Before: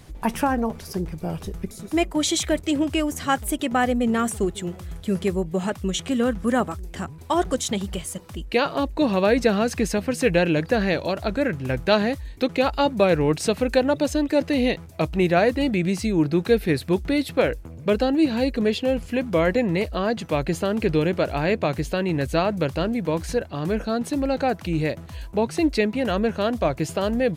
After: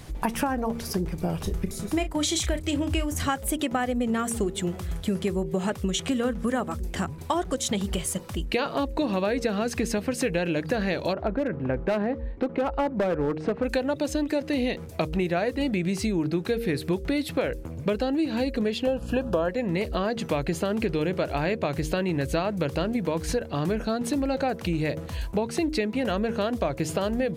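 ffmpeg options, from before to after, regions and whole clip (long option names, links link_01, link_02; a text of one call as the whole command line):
ffmpeg -i in.wav -filter_complex "[0:a]asettb=1/sr,asplit=3[link_01][link_02][link_03];[link_01]atrim=end=1.374[link_04];[link_02]atrim=start=1.37:end=3.23,asetpts=PTS-STARTPTS,afade=type=in:duration=0.004:curve=qsin,afade=type=out:start_time=1.856:duration=0.004:curve=qsin,asubboost=boost=7:cutoff=130,asplit=2[link_05][link_06];[link_06]adelay=34,volume=-11dB[link_07];[link_05][link_07]amix=inputs=2:normalize=0,atrim=end_sample=82026[link_08];[link_03]atrim=start=3.226[link_09];[link_04][link_08]acrossfade=duration=0.004:curve1=hsin:curve2=qsin[link_10];[link_10][link_09]acrossfade=duration=0.004:curve1=qsin:curve2=hsin,asettb=1/sr,asplit=3[link_11][link_12][link_13];[link_11]atrim=end=11.134[link_14];[link_12]atrim=start=11.13:end=13.64,asetpts=PTS-STARTPTS,afade=type=in:duration=0.004:curve=qsin,afade=type=out:start_time=2.506:duration=0.004:curve=qsin,lowpass=1300,equalizer=frequency=110:width_type=o:width=0.89:gain=-7.5,asoftclip=type=hard:threshold=-16.5dB[link_15];[link_13]atrim=start=13.636[link_16];[link_14][link_15]acrossfade=duration=0.004:curve1=hsin:curve2=qsin[link_17];[link_17][link_16]acrossfade=duration=0.004:curve1=qsin:curve2=hsin,asettb=1/sr,asplit=3[link_18][link_19][link_20];[link_18]atrim=end=18.874[link_21];[link_19]atrim=start=18.87:end=19.49,asetpts=PTS-STARTPTS,afade=type=in:duration=0.004:curve=qsin,afade=type=out:start_time=0.616:duration=0.004:curve=qsin,equalizer=frequency=760:width=0.53:gain=7.5,aeval=exprs='val(0)+0.0282*(sin(2*PI*60*n/s)+sin(2*PI*2*60*n/s)/2+sin(2*PI*3*60*n/s)/3+sin(2*PI*4*60*n/s)/4+sin(2*PI*5*60*n/s)/5)':channel_layout=same,asuperstop=centerf=2100:order=8:qfactor=3.2[link_22];[link_20]atrim=start=19.486[link_23];[link_21][link_22]acrossfade=duration=0.004:curve1=hsin:curve2=qsin[link_24];[link_24][link_23]acrossfade=duration=0.004:curve1=qsin:curve2=hsin,bandreject=frequency=77.46:width_type=h:width=4,bandreject=frequency=154.92:width_type=h:width=4,bandreject=frequency=232.38:width_type=h:width=4,bandreject=frequency=309.84:width_type=h:width=4,bandreject=frequency=387.3:width_type=h:width=4,bandreject=frequency=464.76:width_type=h:width=4,bandreject=frequency=542.22:width_type=h:width=4,acompressor=threshold=-27dB:ratio=6,volume=4dB" out.wav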